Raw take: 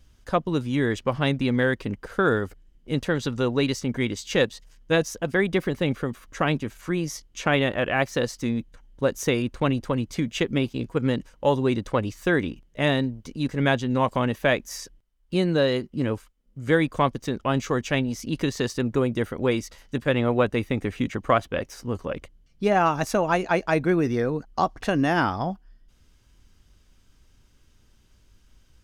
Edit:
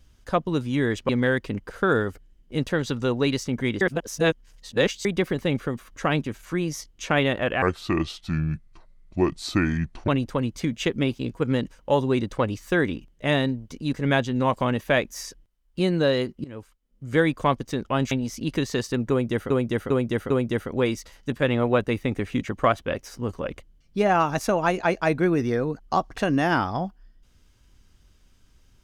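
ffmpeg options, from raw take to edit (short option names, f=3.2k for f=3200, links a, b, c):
-filter_complex "[0:a]asplit=11[a][b][c][d][e][f][g][h][i][j][k];[a]atrim=end=1.092[l];[b]atrim=start=1.448:end=4.172[m];[c]atrim=start=4.168:end=5.412,asetpts=PTS-STARTPTS,areverse[n];[d]atrim=start=5.408:end=7.984[o];[e]atrim=start=7.98:end=9.63,asetpts=PTS-STARTPTS,asetrate=29547,aresample=44100,atrim=end_sample=108604,asetpts=PTS-STARTPTS[p];[f]atrim=start=9.626:end=15.99,asetpts=PTS-STARTPTS,afade=t=out:st=6.36:d=0.004:c=hsin:silence=0.0891251[q];[g]atrim=start=15.99:end=17.662,asetpts=PTS-STARTPTS,afade=t=in:d=0.62:silence=0.0891251[r];[h]atrim=start=17.968:end=19.362[s];[i]atrim=start=18.958:end=19.362[t];[j]atrim=start=18.958:end=19.362[u];[k]atrim=start=18.958[v];[l][m]acrossfade=d=0.004:c1=hsin:c2=hsin[w];[w][n]acrossfade=d=0.004:c1=hsin:c2=hsin[x];[x][o]acrossfade=d=0.004:c1=hsin:c2=hsin[y];[y][p]acrossfade=d=0.004:c1=hsin:c2=hsin[z];[q][r]concat=n=2:v=0:a=1[aa];[z][aa]acrossfade=d=0.004:c1=hsin:c2=hsin[ab];[ab][s]acrossfade=d=0.004:c1=hsin:c2=hsin[ac];[ac][t]acrossfade=d=0.004:c1=hsin:c2=hsin[ad];[ad][u]acrossfade=d=0.004:c1=hsin:c2=hsin[ae];[ae][v]acrossfade=d=0.004:c1=hsin:c2=hsin"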